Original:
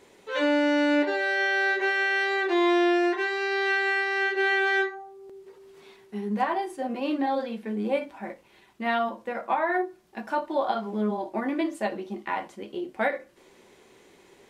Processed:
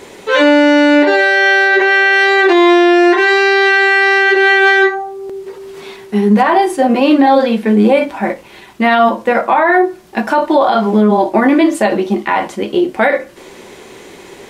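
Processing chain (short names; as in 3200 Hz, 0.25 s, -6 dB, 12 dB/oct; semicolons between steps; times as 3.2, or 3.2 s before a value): 1.68–2.13 high shelf 8100 Hz -10 dB; maximiser +21 dB; gain -1 dB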